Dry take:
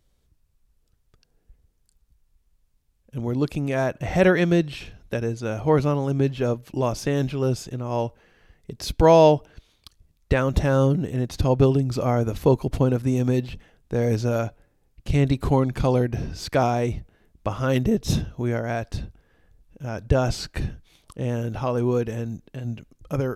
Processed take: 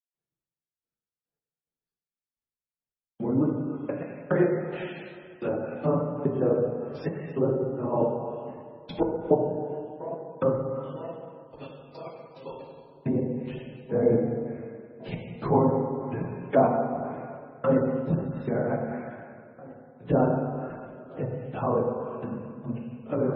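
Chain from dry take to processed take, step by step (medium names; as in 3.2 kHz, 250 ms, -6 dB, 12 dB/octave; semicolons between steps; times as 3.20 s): phase randomisation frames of 50 ms; 10.75–12.87 s: pre-emphasis filter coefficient 0.97; feedback echo behind a low-pass 971 ms, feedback 71%, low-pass 1 kHz, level -21.5 dB; trance gate ".xx...x..x." 108 bpm -60 dB; plate-style reverb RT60 2 s, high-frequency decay 0.75×, DRR 0 dB; gate with hold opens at -42 dBFS; three-band isolator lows -24 dB, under 150 Hz, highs -19 dB, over 3.4 kHz; low-pass that closes with the level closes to 990 Hz, closed at -24.5 dBFS; MP3 16 kbps 24 kHz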